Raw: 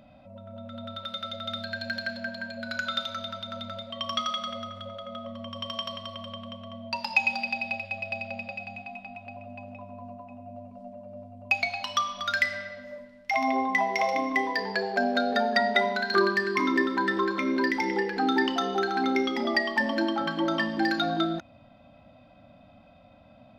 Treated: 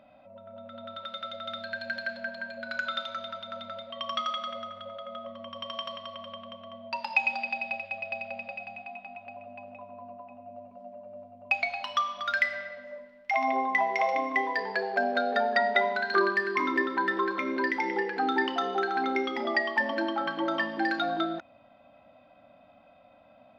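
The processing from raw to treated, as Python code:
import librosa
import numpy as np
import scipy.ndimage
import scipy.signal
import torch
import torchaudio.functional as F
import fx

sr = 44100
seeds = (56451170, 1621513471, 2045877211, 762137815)

y = fx.bass_treble(x, sr, bass_db=-14, treble_db=-12)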